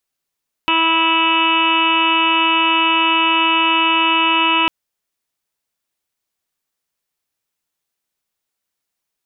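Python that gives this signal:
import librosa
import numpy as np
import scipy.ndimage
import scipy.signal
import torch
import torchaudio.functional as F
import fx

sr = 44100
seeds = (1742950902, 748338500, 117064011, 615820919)

y = fx.additive_steady(sr, length_s=4.0, hz=327.0, level_db=-22.5, upper_db=(-10.5, 5.5, 0.5, -10.5, -9.5, -5, 5.0, 3.5, -15.0, -15.0))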